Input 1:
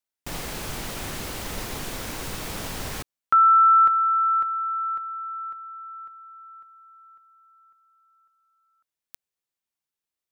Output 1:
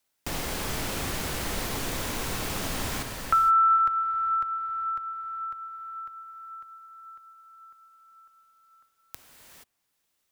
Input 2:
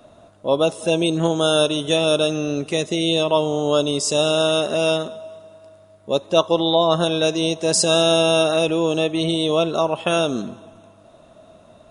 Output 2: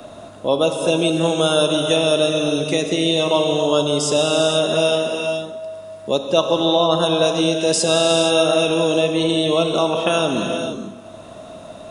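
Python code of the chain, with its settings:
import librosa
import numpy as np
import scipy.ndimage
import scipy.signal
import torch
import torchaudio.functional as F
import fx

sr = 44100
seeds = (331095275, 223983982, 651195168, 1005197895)

y = fx.rev_gated(x, sr, seeds[0], gate_ms=500, shape='flat', drr_db=3.5)
y = fx.band_squash(y, sr, depth_pct=40)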